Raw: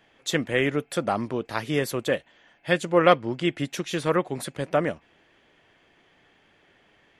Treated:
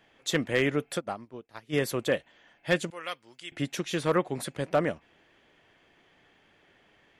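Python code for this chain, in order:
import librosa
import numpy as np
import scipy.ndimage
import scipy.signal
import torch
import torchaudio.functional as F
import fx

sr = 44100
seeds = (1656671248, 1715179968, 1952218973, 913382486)

y = fx.pre_emphasis(x, sr, coefficient=0.97, at=(2.9, 3.52))
y = np.clip(y, -10.0 ** (-12.0 / 20.0), 10.0 ** (-12.0 / 20.0))
y = fx.upward_expand(y, sr, threshold_db=-33.0, expansion=2.5, at=(0.97, 1.72), fade=0.02)
y = y * 10.0 ** (-2.0 / 20.0)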